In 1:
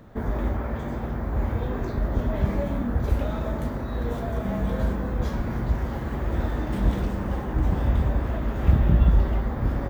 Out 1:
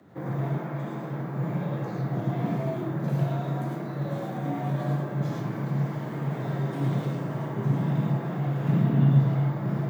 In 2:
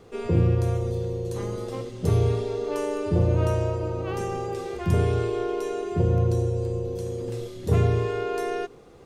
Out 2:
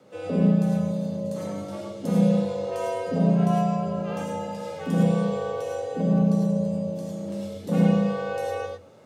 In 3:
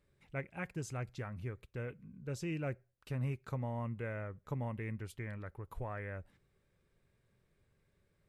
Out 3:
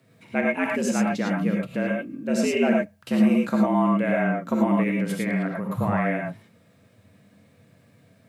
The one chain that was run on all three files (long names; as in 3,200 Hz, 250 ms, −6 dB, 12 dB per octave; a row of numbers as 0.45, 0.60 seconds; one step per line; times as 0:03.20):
frequency shifter +85 Hz
reverb whose tail is shaped and stops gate 130 ms rising, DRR −1 dB
normalise the peak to −9 dBFS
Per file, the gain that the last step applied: −7.0, −5.0, +14.0 decibels